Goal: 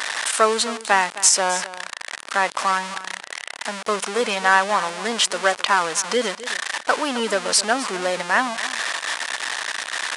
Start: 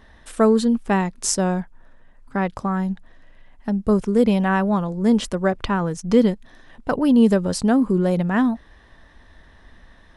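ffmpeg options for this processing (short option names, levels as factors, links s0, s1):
-filter_complex "[0:a]aeval=exprs='val(0)+0.5*0.0668*sgn(val(0))':c=same,highpass=930,asplit=2[s0][s1];[s1]aecho=0:1:261:0.168[s2];[s0][s2]amix=inputs=2:normalize=0,aresample=22050,aresample=44100,alimiter=level_in=2.66:limit=0.891:release=50:level=0:latency=1,volume=0.891"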